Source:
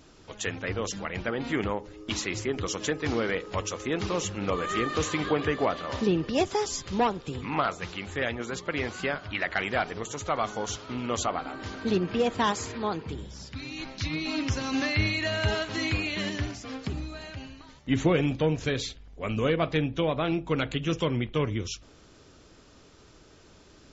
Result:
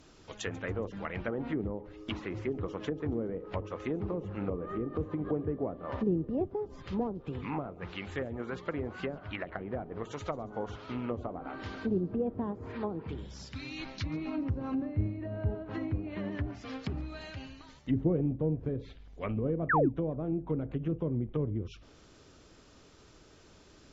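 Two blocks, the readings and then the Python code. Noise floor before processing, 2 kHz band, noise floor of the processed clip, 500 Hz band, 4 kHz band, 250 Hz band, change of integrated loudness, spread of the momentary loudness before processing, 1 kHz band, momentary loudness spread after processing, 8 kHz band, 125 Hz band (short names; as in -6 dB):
-55 dBFS, -11.0 dB, -58 dBFS, -6.0 dB, -16.0 dB, -3.5 dB, -6.0 dB, 10 LU, -9.0 dB, 10 LU, n/a, -3.0 dB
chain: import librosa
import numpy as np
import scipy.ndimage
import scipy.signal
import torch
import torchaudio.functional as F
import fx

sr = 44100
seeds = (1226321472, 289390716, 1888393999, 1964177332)

y = fx.env_lowpass_down(x, sr, base_hz=420.0, full_db=-24.5)
y = fx.spec_paint(y, sr, seeds[0], shape='fall', start_s=19.69, length_s=0.2, low_hz=240.0, high_hz=2000.0, level_db=-23.0)
y = fx.echo_wet_highpass(y, sr, ms=140, feedback_pct=43, hz=3600.0, wet_db=-19.0)
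y = F.gain(torch.from_numpy(y), -3.0).numpy()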